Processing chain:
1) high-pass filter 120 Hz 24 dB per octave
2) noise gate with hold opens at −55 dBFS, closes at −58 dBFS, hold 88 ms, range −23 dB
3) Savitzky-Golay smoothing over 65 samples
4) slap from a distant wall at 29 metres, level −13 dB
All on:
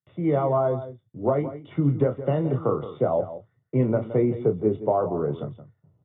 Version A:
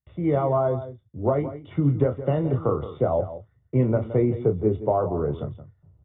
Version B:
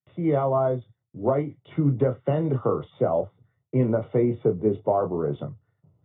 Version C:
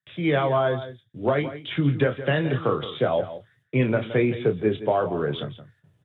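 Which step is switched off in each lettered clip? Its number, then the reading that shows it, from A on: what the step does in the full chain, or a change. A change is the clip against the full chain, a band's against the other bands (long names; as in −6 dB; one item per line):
1, 125 Hz band +2.0 dB
4, change in momentary loudness spread −2 LU
3, 2 kHz band +15.5 dB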